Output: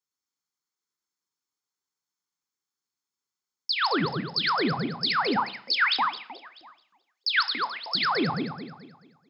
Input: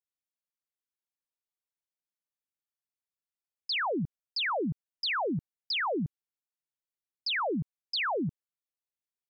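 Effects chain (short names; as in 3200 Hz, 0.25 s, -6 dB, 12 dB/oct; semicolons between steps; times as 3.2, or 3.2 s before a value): regenerating reverse delay 0.108 s, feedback 60%, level -3 dB; HPF 110 Hz; 5.36–7.95 LFO high-pass saw up 3.2 Hz 550–4500 Hz; reverb RT60 0.60 s, pre-delay 3 ms, DRR 12.5 dB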